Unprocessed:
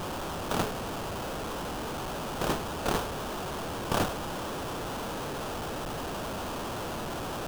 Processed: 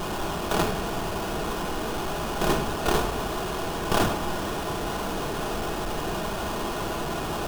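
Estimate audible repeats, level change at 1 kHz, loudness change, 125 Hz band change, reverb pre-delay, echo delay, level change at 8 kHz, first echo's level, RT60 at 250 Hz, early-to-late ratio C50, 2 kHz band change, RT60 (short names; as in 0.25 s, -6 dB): none, +5.5 dB, +5.5 dB, +5.0 dB, 3 ms, none, +4.5 dB, none, 1.9 s, 9.5 dB, +5.5 dB, 1.1 s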